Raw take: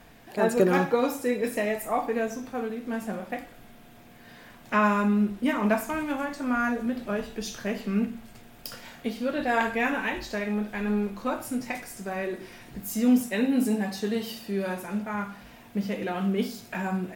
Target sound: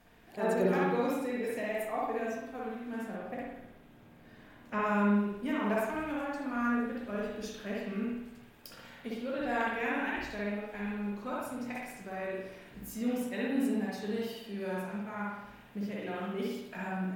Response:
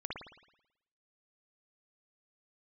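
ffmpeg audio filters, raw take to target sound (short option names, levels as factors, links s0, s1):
-filter_complex "[0:a]asettb=1/sr,asplit=3[s0][s1][s2];[s0]atrim=end=3.164[s3];[s1]atrim=start=3.16:end=4.87,asetpts=PTS-STARTPTS,afade=t=in:d=0.004:c=qsin,afade=t=out:st=1.706:d=0.004:c=qsin,tiltshelf=f=970:g=3.5[s4];[s2]atrim=start=4.866[s5];[s3][s4]acrossfade=d=0.004:c1=hsin:c2=qsin[s6];[s6][s5]acrossfade=d=0.004:c1=qsin:c2=hsin[s7];[1:a]atrim=start_sample=2205[s8];[s7][s8]afir=irnorm=-1:irlink=0,volume=0.447"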